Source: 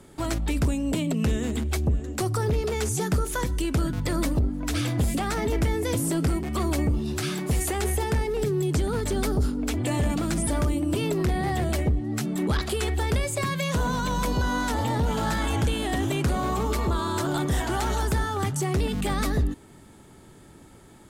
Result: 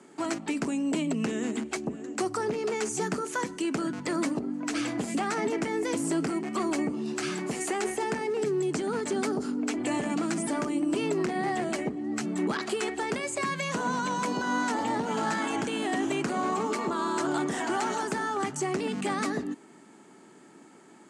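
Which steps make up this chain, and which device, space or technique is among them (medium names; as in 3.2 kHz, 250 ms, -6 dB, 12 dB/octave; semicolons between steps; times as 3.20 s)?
television speaker (cabinet simulation 210–8300 Hz, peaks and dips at 540 Hz -5 dB, 3.6 kHz -8 dB, 5.2 kHz -3 dB)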